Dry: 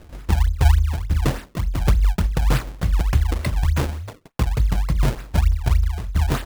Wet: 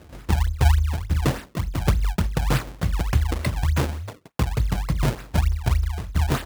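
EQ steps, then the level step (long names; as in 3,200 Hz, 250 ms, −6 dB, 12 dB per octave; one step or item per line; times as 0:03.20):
high-pass filter 64 Hz
0.0 dB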